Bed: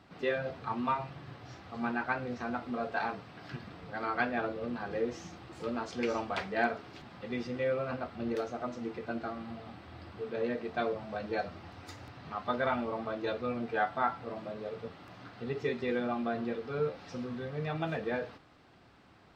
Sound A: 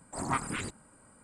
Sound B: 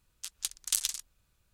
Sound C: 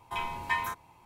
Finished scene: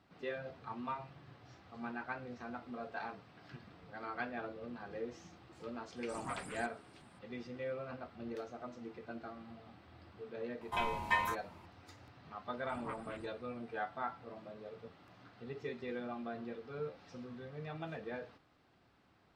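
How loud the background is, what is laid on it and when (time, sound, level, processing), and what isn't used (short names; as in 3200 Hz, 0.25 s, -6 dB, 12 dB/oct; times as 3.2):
bed -9.5 dB
5.96 add A -13 dB
10.61 add C -2 dB + high shelf 9400 Hz -7.5 dB
12.56 add A -14 dB + running mean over 7 samples
not used: B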